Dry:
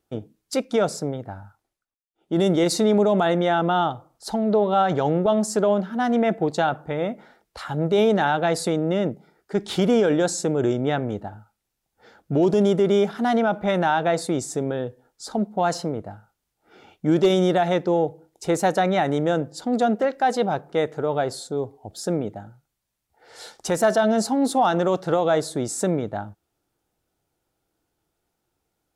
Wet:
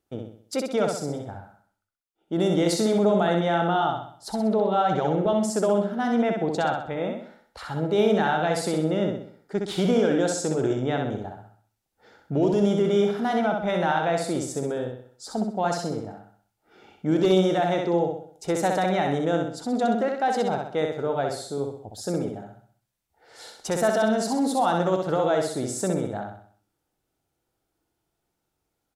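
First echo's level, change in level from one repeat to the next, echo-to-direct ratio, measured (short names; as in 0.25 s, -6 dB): -4.0 dB, -7.0 dB, -3.0 dB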